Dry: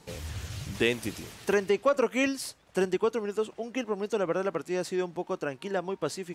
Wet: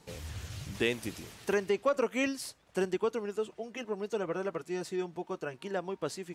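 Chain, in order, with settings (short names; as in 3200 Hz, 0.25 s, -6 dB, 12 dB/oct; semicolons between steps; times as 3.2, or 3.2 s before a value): 3.36–5.54 notch comb 270 Hz; gain -4 dB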